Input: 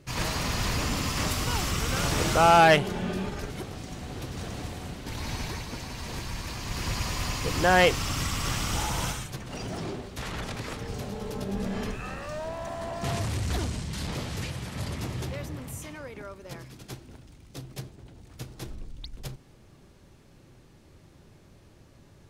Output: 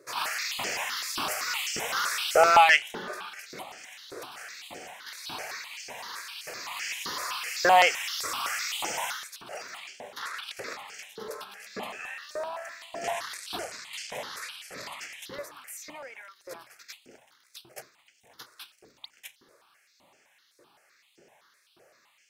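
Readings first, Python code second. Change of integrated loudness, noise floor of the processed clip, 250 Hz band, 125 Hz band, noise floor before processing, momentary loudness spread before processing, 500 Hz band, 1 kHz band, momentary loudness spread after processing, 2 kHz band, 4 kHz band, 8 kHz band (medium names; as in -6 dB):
0.0 dB, -66 dBFS, -14.5 dB, -25.5 dB, -55 dBFS, 20 LU, -2.5 dB, +0.5 dB, 23 LU, +2.0 dB, +0.5 dB, -0.5 dB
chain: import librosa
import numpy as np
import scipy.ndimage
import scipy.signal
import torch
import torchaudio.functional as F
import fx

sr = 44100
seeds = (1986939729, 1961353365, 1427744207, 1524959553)

y = fx.filter_lfo_highpass(x, sr, shape='saw_up', hz=1.7, low_hz=380.0, high_hz=4000.0, q=1.5)
y = fx.phaser_held(y, sr, hz=7.8, low_hz=810.0, high_hz=3800.0)
y = F.gain(torch.from_numpy(y), 3.0).numpy()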